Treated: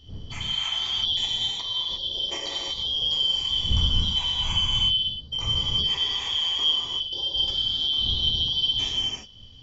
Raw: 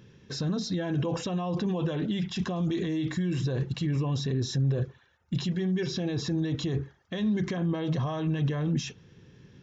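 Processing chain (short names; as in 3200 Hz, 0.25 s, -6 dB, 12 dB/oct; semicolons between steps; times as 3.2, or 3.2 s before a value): four-band scrambler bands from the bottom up 3412; wind noise 92 Hz -40 dBFS; 1.26–2.84 negative-ratio compressor -32 dBFS, ratio -0.5; 3.69–4.61 low shelf 94 Hz +10 dB; non-linear reverb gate 0.38 s flat, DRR -5 dB; gain -3.5 dB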